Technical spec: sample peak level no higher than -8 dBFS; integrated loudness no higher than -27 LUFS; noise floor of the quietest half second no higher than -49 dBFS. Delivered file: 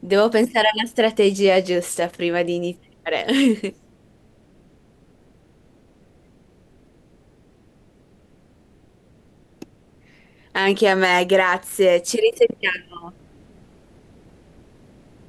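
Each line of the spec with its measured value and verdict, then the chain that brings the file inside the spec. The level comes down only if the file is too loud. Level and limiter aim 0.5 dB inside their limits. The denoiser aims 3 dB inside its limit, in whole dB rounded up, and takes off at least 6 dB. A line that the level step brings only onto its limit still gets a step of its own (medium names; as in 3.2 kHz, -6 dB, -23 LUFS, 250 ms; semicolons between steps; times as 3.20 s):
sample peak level -5.5 dBFS: fail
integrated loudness -19.0 LUFS: fail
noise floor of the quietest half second -54 dBFS: pass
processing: trim -8.5 dB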